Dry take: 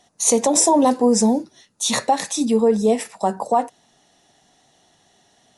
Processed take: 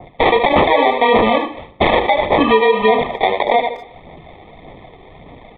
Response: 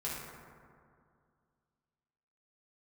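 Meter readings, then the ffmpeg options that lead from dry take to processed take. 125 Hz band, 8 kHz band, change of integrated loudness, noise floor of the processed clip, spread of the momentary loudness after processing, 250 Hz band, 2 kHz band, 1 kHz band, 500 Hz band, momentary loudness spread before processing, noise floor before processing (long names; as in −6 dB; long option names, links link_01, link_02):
+5.5 dB, below −40 dB, +4.0 dB, −42 dBFS, 6 LU, −1.5 dB, +16.0 dB, +7.5 dB, +5.5 dB, 9 LU, −60 dBFS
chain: -filter_complex "[0:a]lowshelf=frequency=360:gain=-8,acrusher=samples=31:mix=1:aa=0.000001,acrossover=split=380[link_01][link_02];[link_01]acompressor=threshold=-59dB:ratio=1.5[link_03];[link_03][link_02]amix=inputs=2:normalize=0,bandreject=frequency=60:width_type=h:width=6,bandreject=frequency=120:width_type=h:width=6,bandreject=frequency=180:width_type=h:width=6,bandreject=frequency=240:width_type=h:width=6,bandreject=frequency=300:width_type=h:width=6,bandreject=frequency=360:width_type=h:width=6,bandreject=frequency=420:width_type=h:width=6,bandreject=frequency=480:width_type=h:width=6,bandreject=frequency=540:width_type=h:width=6,bandreject=frequency=600:width_type=h:width=6,asplit=2[link_04][link_05];[link_05]aecho=0:1:76|152|228:0.282|0.0564|0.0113[link_06];[link_04][link_06]amix=inputs=2:normalize=0,acompressor=threshold=-27dB:ratio=5,asuperstop=centerf=1600:order=8:qfactor=6.7,aphaser=in_gain=1:out_gain=1:delay=2.6:decay=0.38:speed=1.7:type=sinusoidal,aresample=8000,aresample=44100,asplit=2[link_07][link_08];[link_08]adelay=240,highpass=300,lowpass=3400,asoftclip=type=hard:threshold=-22.5dB,volume=-26dB[link_09];[link_07][link_09]amix=inputs=2:normalize=0,alimiter=level_in=19.5dB:limit=-1dB:release=50:level=0:latency=1,adynamicequalizer=threshold=0.0562:dfrequency=1900:dqfactor=0.7:tfrequency=1900:tqfactor=0.7:attack=5:release=100:ratio=0.375:range=2:mode=cutabove:tftype=highshelf"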